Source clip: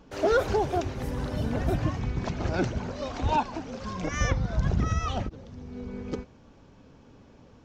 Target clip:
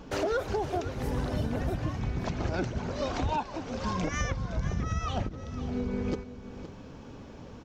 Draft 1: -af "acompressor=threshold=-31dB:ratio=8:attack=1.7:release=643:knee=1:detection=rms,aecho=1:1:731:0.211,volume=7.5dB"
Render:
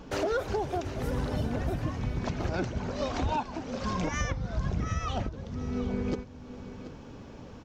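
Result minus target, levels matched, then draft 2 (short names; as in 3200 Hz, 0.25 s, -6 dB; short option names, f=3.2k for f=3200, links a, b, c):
echo 0.216 s late
-af "acompressor=threshold=-31dB:ratio=8:attack=1.7:release=643:knee=1:detection=rms,aecho=1:1:515:0.211,volume=7.5dB"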